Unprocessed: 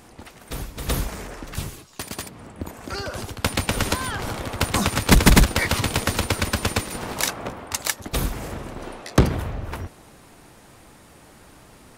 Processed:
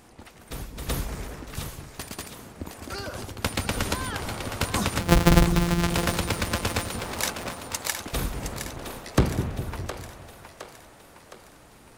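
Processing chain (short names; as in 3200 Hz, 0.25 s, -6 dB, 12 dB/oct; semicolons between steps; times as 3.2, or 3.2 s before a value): 5–5.9 sample sorter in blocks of 256 samples; on a send: split-band echo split 450 Hz, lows 0.203 s, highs 0.714 s, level -8 dB; on the sum: gain -4.5 dB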